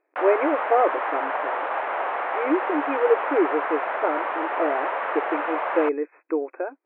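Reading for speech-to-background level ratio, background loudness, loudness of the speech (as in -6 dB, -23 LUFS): 1.5 dB, -27.0 LUFS, -25.5 LUFS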